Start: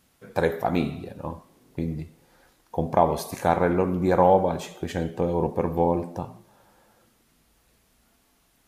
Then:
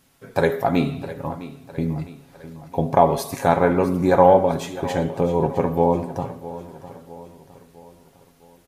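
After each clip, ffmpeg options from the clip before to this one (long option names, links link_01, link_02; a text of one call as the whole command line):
ffmpeg -i in.wav -af "aecho=1:1:7.3:0.43,aecho=1:1:657|1314|1971|2628:0.168|0.0823|0.0403|0.0198,volume=3.5dB" out.wav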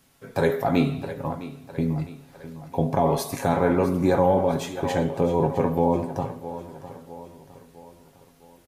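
ffmpeg -i in.wav -filter_complex "[0:a]acrossover=split=370|4100[link_01][link_02][link_03];[link_02]alimiter=limit=-14.5dB:level=0:latency=1:release=15[link_04];[link_01][link_04][link_03]amix=inputs=3:normalize=0,asplit=2[link_05][link_06];[link_06]adelay=20,volume=-12.5dB[link_07];[link_05][link_07]amix=inputs=2:normalize=0,volume=-1dB" out.wav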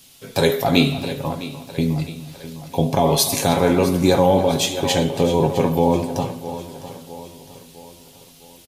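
ffmpeg -i in.wav -filter_complex "[0:a]highshelf=frequency=2300:width_type=q:width=1.5:gain=10,asplit=2[link_01][link_02];[link_02]adelay=297.4,volume=-15dB,highshelf=frequency=4000:gain=-6.69[link_03];[link_01][link_03]amix=inputs=2:normalize=0,volume=4.5dB" out.wav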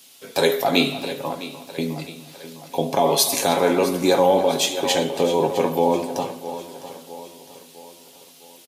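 ffmpeg -i in.wav -af "highpass=290" out.wav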